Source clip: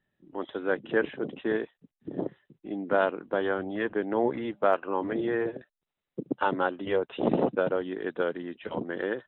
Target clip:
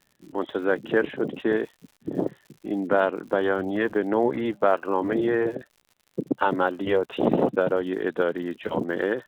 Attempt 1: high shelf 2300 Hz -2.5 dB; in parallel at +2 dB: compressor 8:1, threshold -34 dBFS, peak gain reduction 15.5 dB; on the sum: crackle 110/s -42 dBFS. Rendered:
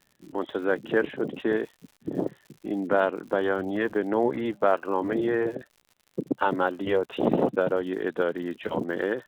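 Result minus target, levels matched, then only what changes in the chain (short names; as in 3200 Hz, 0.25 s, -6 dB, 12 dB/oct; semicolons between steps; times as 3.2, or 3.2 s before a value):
compressor: peak gain reduction +5.5 dB
change: compressor 8:1, threshold -27.5 dBFS, peak gain reduction 10 dB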